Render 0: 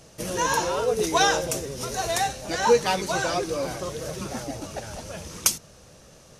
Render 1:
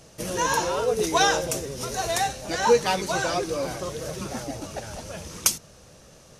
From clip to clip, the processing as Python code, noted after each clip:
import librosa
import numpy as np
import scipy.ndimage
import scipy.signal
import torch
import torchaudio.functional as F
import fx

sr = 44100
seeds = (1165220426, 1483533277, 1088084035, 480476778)

y = x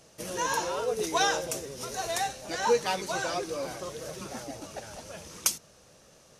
y = fx.low_shelf(x, sr, hz=160.0, db=-8.5)
y = F.gain(torch.from_numpy(y), -5.0).numpy()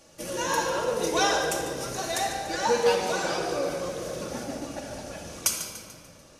y = fx.echo_feedback(x, sr, ms=146, feedback_pct=46, wet_db=-12.5)
y = fx.room_shoebox(y, sr, seeds[0], volume_m3=3800.0, walls='mixed', distance_m=2.4)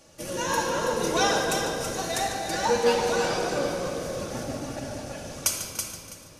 y = fx.octave_divider(x, sr, octaves=1, level_db=-3.0)
y = fx.echo_feedback(y, sr, ms=328, feedback_pct=21, wet_db=-6.5)